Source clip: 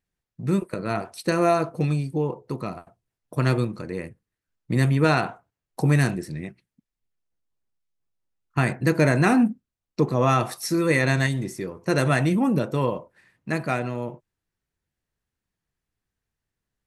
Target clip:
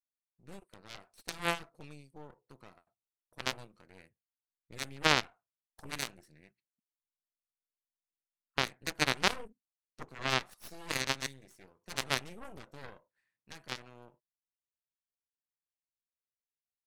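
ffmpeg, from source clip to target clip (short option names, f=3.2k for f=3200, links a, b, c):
-af "tiltshelf=f=650:g=-5,aeval=exprs='0.631*(cos(1*acos(clip(val(0)/0.631,-1,1)))-cos(1*PI/2))+0.158*(cos(2*acos(clip(val(0)/0.631,-1,1)))-cos(2*PI/2))+0.224*(cos(3*acos(clip(val(0)/0.631,-1,1)))-cos(3*PI/2))+0.0447*(cos(4*acos(clip(val(0)/0.631,-1,1)))-cos(4*PI/2))+0.0141*(cos(8*acos(clip(val(0)/0.631,-1,1)))-cos(8*PI/2))':c=same,volume=-3dB"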